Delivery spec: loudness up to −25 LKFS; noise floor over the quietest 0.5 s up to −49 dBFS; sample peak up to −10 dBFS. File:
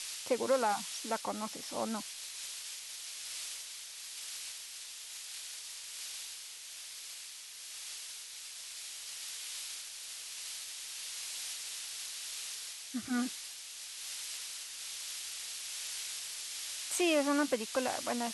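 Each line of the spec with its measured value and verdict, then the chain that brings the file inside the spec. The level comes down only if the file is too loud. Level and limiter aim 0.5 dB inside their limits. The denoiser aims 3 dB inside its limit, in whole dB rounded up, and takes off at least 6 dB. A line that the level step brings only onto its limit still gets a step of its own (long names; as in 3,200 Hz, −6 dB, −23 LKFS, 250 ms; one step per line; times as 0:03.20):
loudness −38.0 LKFS: in spec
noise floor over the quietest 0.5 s −48 dBFS: out of spec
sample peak −18.0 dBFS: in spec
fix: broadband denoise 6 dB, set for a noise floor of −48 dBFS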